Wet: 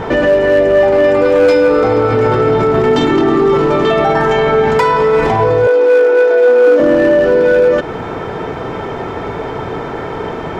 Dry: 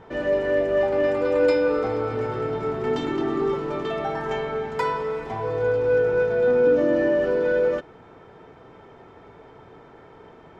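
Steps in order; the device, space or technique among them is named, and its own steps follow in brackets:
loud club master (downward compressor 1.5 to 1, threshold −29 dBFS, peak gain reduction 5 dB; hard clipping −20 dBFS, distortion −23 dB; boost into a limiter +29 dB)
0:05.67–0:06.80: Butterworth high-pass 270 Hz 72 dB per octave
level −3.5 dB

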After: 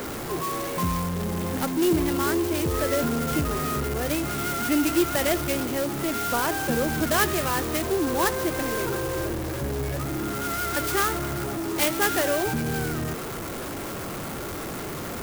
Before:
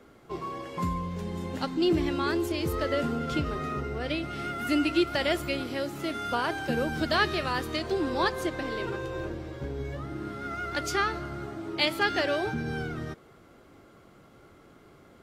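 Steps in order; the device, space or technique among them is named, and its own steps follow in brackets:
early CD player with a faulty converter (converter with a step at zero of −28.5 dBFS; converter with an unsteady clock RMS 0.065 ms)
level +1 dB

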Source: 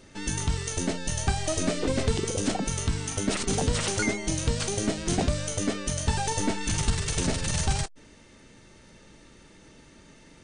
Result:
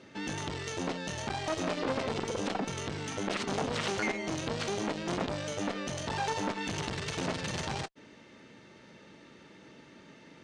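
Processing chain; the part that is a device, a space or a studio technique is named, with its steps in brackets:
valve radio (band-pass filter 150–4,000 Hz; tube saturation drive 19 dB, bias 0.4; saturating transformer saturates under 1,200 Hz)
level +2 dB

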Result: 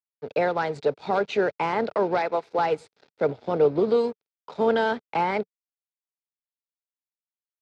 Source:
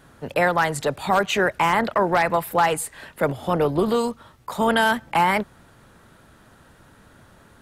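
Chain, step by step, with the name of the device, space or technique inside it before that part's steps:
0:02.19–0:02.59: high-pass filter 240 Hz
blown loudspeaker (dead-zone distortion −36.5 dBFS; loudspeaker in its box 120–4,700 Hz, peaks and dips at 180 Hz −3 dB, 440 Hz +8 dB, 1,100 Hz −7 dB, 1,800 Hz −8 dB, 3,000 Hz −8 dB)
level −3 dB

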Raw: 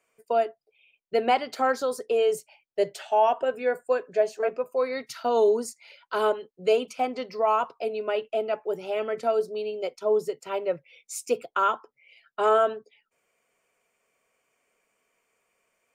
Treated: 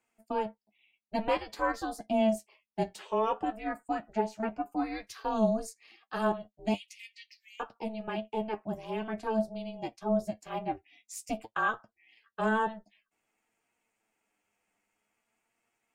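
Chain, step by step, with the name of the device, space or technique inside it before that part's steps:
0:06.74–0:07.60: Chebyshev high-pass filter 2,100 Hz, order 8
alien voice (ring modulation 220 Hz; flanger 0.51 Hz, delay 8.5 ms, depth 1.7 ms, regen +41%)

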